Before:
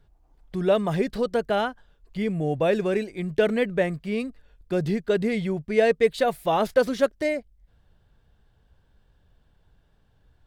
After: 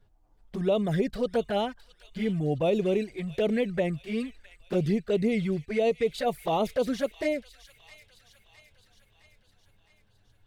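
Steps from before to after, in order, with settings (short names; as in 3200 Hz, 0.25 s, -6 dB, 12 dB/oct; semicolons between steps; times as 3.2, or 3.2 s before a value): limiter -15 dBFS, peak gain reduction 6.5 dB; envelope flanger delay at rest 10.1 ms, full sweep at -20 dBFS; thin delay 0.662 s, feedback 57%, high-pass 2400 Hz, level -11.5 dB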